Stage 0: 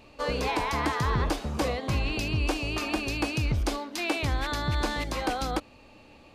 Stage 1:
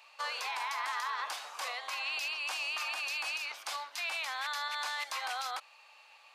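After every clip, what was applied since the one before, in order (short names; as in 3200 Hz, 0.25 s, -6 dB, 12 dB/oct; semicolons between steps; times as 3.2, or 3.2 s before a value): HPF 880 Hz 24 dB/oct; limiter -26.5 dBFS, peak gain reduction 9.5 dB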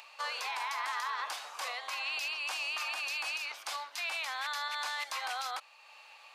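upward compressor, threshold -48 dBFS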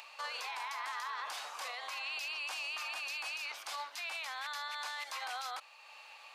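limiter -32.5 dBFS, peak gain reduction 6 dB; gain +1 dB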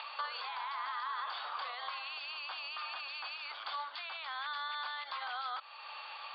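compressor 5:1, threshold -47 dBFS, peak gain reduction 9.5 dB; rippled Chebyshev low-pass 4700 Hz, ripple 9 dB; gain +13 dB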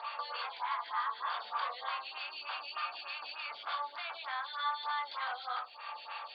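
shoebox room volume 330 m³, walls furnished, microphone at 1.7 m; photocell phaser 3.3 Hz; gain +2.5 dB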